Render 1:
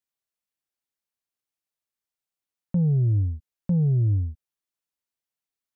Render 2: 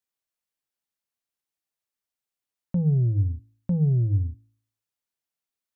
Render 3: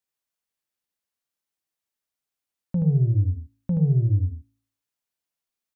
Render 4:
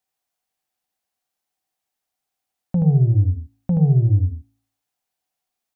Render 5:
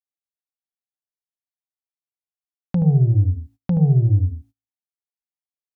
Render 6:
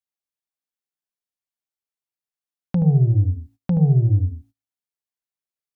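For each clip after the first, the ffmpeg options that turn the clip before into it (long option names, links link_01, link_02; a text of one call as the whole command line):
ffmpeg -i in.wav -af "bandreject=frequency=55.01:width_type=h:width=4,bandreject=frequency=110.02:width_type=h:width=4,bandreject=frequency=165.03:width_type=h:width=4,bandreject=frequency=220.04:width_type=h:width=4,bandreject=frequency=275.05:width_type=h:width=4,bandreject=frequency=330.06:width_type=h:width=4" out.wav
ffmpeg -i in.wav -af "aecho=1:1:77:0.596" out.wav
ffmpeg -i in.wav -af "equalizer=frequency=750:width_type=o:width=0.23:gain=14,volume=4.5dB" out.wav
ffmpeg -i in.wav -af "agate=range=-26dB:threshold=-43dB:ratio=16:detection=peak" out.wav
ffmpeg -i in.wav -af "equalizer=frequency=63:width_type=o:width=0.68:gain=-5.5" out.wav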